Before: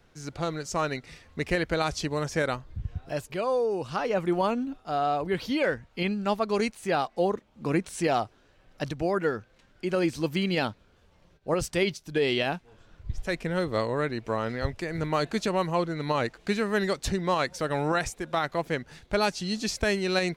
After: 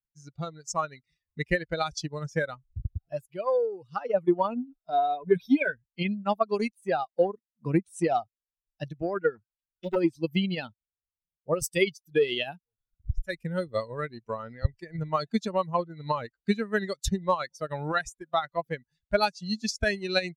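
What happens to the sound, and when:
0:04.80–0:05.72: EQ curve with evenly spaced ripples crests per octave 1.6, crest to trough 10 dB
0:09.35–0:09.96: highs frequency-modulated by the lows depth 0.72 ms
0:11.54–0:14.44: high-shelf EQ 9,300 Hz +9.5 dB
whole clip: spectral dynamics exaggerated over time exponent 2; transient designer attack +5 dB, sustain −5 dB; level +2.5 dB

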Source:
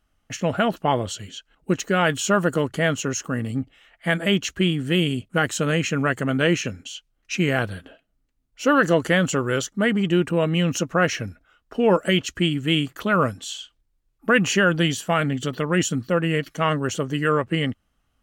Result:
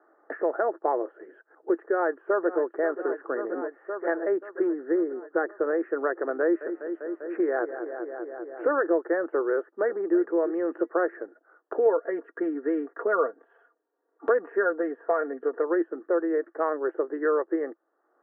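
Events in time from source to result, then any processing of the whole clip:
0:01.77–0:02.61: delay throw 530 ms, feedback 70%, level −13 dB
0:04.67–0:05.59: linear-phase brick-wall low-pass 2,200 Hz
0:06.41–0:08.69: feedback echo with a low-pass in the loop 198 ms, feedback 65%, low-pass 3,100 Hz, level −12.5 dB
0:09.55–0:10.17: delay throw 330 ms, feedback 25%, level −14 dB
0:11.85–0:15.62: comb filter 4.3 ms
whole clip: Chebyshev band-pass filter 330–1,800 Hz, order 5; spectral tilt −4.5 dB per octave; multiband upward and downward compressor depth 70%; level −5.5 dB

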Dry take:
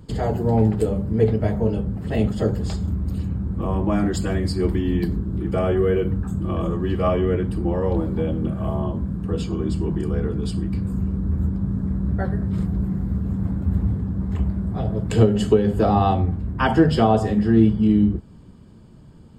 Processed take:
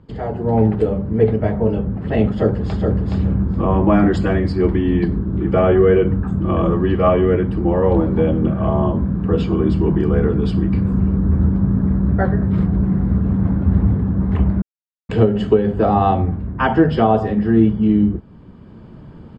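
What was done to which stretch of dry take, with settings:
0:02.30–0:03.02: delay throw 420 ms, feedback 15%, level −4.5 dB
0:14.62–0:15.09: silence
whole clip: low-pass filter 2,500 Hz 12 dB per octave; low-shelf EQ 180 Hz −5 dB; automatic gain control gain up to 12 dB; level −1 dB

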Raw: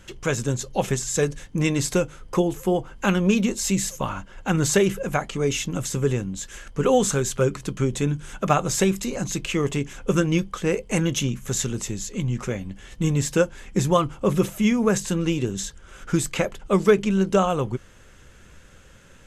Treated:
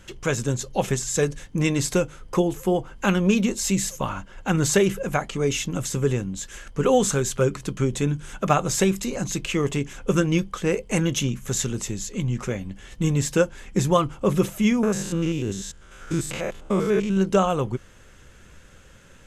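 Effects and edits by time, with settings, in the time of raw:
0:14.83–0:17.17: spectrum averaged block by block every 100 ms

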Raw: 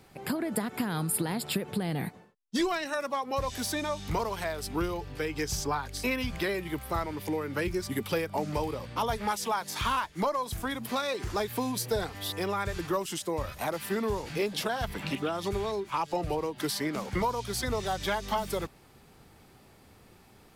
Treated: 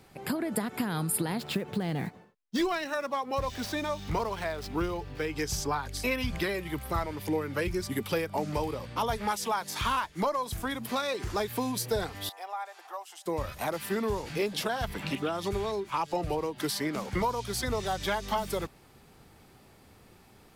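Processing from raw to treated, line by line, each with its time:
0:01.38–0:05.31: running median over 5 samples
0:05.86–0:07.85: phase shifter 2 Hz, delay 2 ms, feedback 28%
0:12.29–0:13.26: four-pole ladder high-pass 700 Hz, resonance 75%

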